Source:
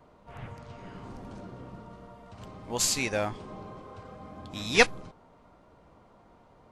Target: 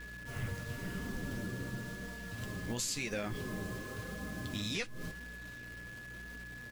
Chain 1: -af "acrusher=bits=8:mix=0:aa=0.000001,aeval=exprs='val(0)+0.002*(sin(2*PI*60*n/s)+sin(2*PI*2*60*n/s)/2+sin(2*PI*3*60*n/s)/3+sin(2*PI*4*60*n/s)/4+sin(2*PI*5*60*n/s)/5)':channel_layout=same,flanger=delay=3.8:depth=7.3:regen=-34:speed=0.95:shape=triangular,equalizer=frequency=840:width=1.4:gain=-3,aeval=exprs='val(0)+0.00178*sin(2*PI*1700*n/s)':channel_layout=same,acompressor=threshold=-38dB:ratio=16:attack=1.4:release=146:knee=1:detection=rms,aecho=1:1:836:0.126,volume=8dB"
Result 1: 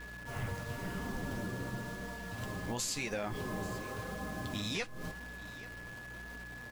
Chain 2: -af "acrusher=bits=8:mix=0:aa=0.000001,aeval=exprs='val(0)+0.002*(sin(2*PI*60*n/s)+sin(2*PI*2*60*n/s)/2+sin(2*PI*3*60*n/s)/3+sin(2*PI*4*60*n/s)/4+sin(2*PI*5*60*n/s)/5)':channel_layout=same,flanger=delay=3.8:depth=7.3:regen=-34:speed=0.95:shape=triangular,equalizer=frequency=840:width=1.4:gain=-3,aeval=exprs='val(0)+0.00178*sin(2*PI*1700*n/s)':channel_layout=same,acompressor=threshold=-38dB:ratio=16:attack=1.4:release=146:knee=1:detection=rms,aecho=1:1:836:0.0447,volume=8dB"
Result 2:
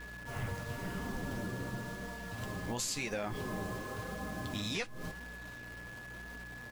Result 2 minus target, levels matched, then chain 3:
1,000 Hz band +5.5 dB
-af "acrusher=bits=8:mix=0:aa=0.000001,aeval=exprs='val(0)+0.002*(sin(2*PI*60*n/s)+sin(2*PI*2*60*n/s)/2+sin(2*PI*3*60*n/s)/3+sin(2*PI*4*60*n/s)/4+sin(2*PI*5*60*n/s)/5)':channel_layout=same,flanger=delay=3.8:depth=7.3:regen=-34:speed=0.95:shape=triangular,equalizer=frequency=840:width=1.4:gain=-12.5,aeval=exprs='val(0)+0.00178*sin(2*PI*1700*n/s)':channel_layout=same,acompressor=threshold=-38dB:ratio=16:attack=1.4:release=146:knee=1:detection=rms,aecho=1:1:836:0.0447,volume=8dB"

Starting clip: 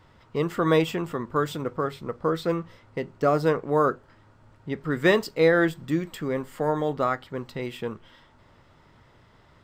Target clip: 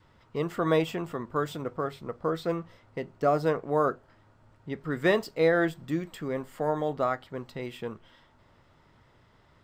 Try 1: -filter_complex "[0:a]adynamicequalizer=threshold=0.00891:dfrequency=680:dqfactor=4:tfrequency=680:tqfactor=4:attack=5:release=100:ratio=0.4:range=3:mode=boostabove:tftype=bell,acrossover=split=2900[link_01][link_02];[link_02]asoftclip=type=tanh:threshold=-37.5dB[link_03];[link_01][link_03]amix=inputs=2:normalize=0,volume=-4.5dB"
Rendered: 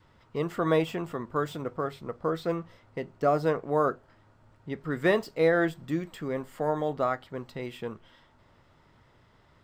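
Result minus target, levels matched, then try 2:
soft clipping: distortion +9 dB
-filter_complex "[0:a]adynamicequalizer=threshold=0.00891:dfrequency=680:dqfactor=4:tfrequency=680:tqfactor=4:attack=5:release=100:ratio=0.4:range=3:mode=boostabove:tftype=bell,acrossover=split=2900[link_01][link_02];[link_02]asoftclip=type=tanh:threshold=-29dB[link_03];[link_01][link_03]amix=inputs=2:normalize=0,volume=-4.5dB"

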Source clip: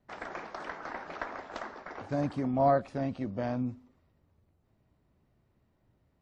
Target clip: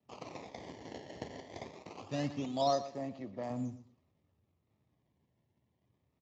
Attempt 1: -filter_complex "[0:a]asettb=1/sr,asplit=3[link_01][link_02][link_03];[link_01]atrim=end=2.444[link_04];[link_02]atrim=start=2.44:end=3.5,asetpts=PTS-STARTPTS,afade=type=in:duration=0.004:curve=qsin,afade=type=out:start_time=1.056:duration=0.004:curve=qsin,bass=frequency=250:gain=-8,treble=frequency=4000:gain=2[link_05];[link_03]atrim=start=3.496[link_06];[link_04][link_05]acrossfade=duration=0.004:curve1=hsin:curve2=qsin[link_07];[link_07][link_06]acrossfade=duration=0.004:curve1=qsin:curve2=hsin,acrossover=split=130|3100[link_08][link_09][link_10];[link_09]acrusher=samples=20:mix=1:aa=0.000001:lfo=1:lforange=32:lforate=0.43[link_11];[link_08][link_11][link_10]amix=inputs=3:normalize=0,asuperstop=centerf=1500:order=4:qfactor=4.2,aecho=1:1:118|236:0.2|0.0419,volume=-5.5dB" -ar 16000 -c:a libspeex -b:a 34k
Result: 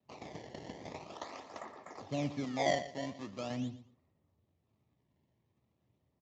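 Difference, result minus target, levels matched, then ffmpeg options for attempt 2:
sample-and-hold swept by an LFO: distortion +12 dB
-filter_complex "[0:a]asettb=1/sr,asplit=3[link_01][link_02][link_03];[link_01]atrim=end=2.444[link_04];[link_02]atrim=start=2.44:end=3.5,asetpts=PTS-STARTPTS,afade=type=in:duration=0.004:curve=qsin,afade=type=out:start_time=1.056:duration=0.004:curve=qsin,bass=frequency=250:gain=-8,treble=frequency=4000:gain=2[link_05];[link_03]atrim=start=3.496[link_06];[link_04][link_05]acrossfade=duration=0.004:curve1=hsin:curve2=qsin[link_07];[link_07][link_06]acrossfade=duration=0.004:curve1=qsin:curve2=hsin,acrossover=split=130|3100[link_08][link_09][link_10];[link_09]acrusher=samples=20:mix=1:aa=0.000001:lfo=1:lforange=32:lforate=0.23[link_11];[link_08][link_11][link_10]amix=inputs=3:normalize=0,asuperstop=centerf=1500:order=4:qfactor=4.2,aecho=1:1:118|236:0.2|0.0419,volume=-5.5dB" -ar 16000 -c:a libspeex -b:a 34k

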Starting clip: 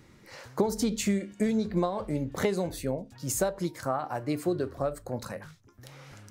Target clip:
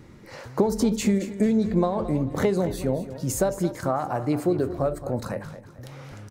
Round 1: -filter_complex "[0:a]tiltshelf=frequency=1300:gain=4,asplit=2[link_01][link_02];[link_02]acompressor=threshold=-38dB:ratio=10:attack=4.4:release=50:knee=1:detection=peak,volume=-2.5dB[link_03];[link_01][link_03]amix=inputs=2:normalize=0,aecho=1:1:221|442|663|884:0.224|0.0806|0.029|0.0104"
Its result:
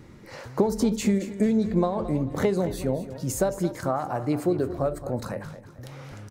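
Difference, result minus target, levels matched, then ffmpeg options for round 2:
downward compressor: peak gain reduction +7 dB
-filter_complex "[0:a]tiltshelf=frequency=1300:gain=4,asplit=2[link_01][link_02];[link_02]acompressor=threshold=-30.5dB:ratio=10:attack=4.4:release=50:knee=1:detection=peak,volume=-2.5dB[link_03];[link_01][link_03]amix=inputs=2:normalize=0,aecho=1:1:221|442|663|884:0.224|0.0806|0.029|0.0104"

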